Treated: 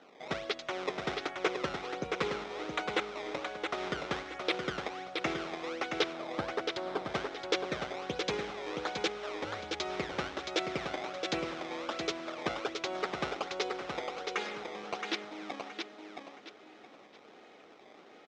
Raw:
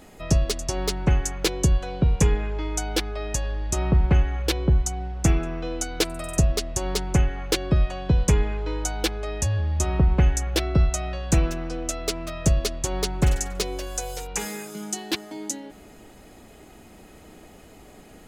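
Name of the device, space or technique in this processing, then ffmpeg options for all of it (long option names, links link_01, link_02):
circuit-bent sampling toy: -filter_complex "[0:a]acrusher=samples=18:mix=1:aa=0.000001:lfo=1:lforange=28.8:lforate=1.3,highpass=500,equalizer=frequency=650:width_type=q:width=4:gain=-4,equalizer=frequency=970:width_type=q:width=4:gain=-7,equalizer=frequency=1700:width_type=q:width=4:gain=-5,equalizer=frequency=2800:width_type=q:width=4:gain=-5,equalizer=frequency=4500:width_type=q:width=4:gain=-7,lowpass=frequency=4800:width=0.5412,lowpass=frequency=4800:width=1.3066,asettb=1/sr,asplit=3[link_01][link_02][link_03];[link_01]atrim=end=6.134[link_04];[link_02]atrim=start=6.13:end=7.05,asetpts=PTS-STARTPTS,afade=type=in:duration=0.004:curve=qsin,afade=type=out:start_time=0.916:duration=0.004:curve=qsin,equalizer=frequency=100:width_type=o:width=0.67:gain=4,equalizer=frequency=2500:width_type=o:width=0.67:gain=-9,equalizer=frequency=6300:width_type=o:width=0.67:gain=-10[link_05];[link_03]atrim=start=7.046[link_06];[link_04][link_05]acrossfade=duration=0.004:curve1=hsin:curve2=qsin[link_07];[link_07][link_06]acrossfade=duration=0.004:curve1=qsin:curve2=hsin,aecho=1:1:671|1342|2013|2684:0.562|0.163|0.0473|0.0137,volume=-1.5dB"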